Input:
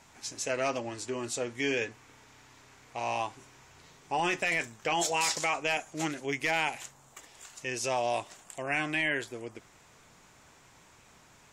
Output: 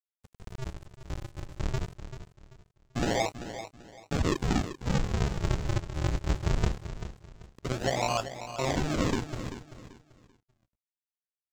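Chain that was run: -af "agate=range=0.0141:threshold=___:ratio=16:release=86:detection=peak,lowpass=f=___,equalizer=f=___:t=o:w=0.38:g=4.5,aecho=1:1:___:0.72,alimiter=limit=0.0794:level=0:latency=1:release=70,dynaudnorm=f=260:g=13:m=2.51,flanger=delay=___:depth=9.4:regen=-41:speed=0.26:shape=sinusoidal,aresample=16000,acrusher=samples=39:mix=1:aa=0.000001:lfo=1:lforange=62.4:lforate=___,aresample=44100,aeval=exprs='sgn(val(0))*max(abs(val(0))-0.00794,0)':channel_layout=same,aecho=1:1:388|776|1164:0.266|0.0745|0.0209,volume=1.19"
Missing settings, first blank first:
0.00282, 5200, 130, 7.4, 8.8, 0.21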